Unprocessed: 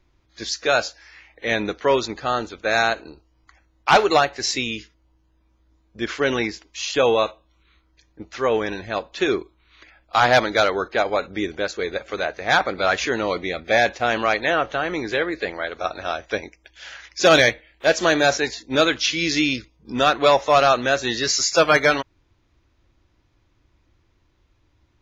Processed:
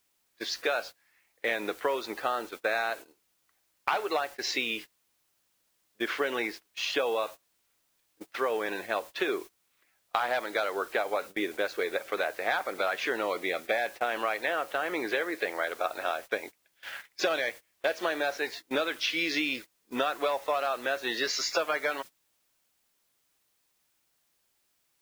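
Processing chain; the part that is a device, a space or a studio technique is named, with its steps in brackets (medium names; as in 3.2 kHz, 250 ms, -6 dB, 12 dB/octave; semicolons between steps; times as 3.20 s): baby monitor (band-pass 390–3400 Hz; compression 12:1, threshold -25 dBFS, peak gain reduction 16 dB; white noise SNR 20 dB; gate -40 dBFS, range -21 dB)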